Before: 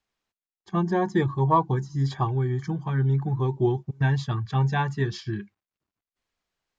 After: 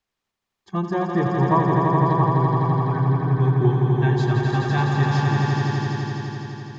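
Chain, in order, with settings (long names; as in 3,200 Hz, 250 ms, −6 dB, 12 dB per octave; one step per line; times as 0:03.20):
0:01.06–0:03.36: low-pass filter 2,200 Hz 12 dB per octave
echo that builds up and dies away 84 ms, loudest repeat 5, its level −4.5 dB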